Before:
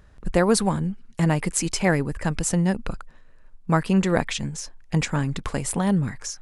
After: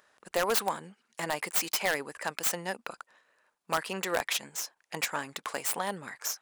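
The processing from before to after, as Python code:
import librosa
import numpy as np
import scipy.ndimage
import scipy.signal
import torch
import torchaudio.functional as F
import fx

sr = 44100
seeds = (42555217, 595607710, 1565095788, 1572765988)

p1 = fx.tracing_dist(x, sr, depth_ms=0.27)
p2 = scipy.signal.sosfilt(scipy.signal.butter(2, 620.0, 'highpass', fs=sr, output='sos'), p1)
p3 = fx.high_shelf(p2, sr, hz=7100.0, db=4.0)
p4 = (np.mod(10.0 ** (14.5 / 20.0) * p3 + 1.0, 2.0) - 1.0) / 10.0 ** (14.5 / 20.0)
p5 = p3 + F.gain(torch.from_numpy(p4), -3.5).numpy()
y = F.gain(torch.from_numpy(p5), -6.5).numpy()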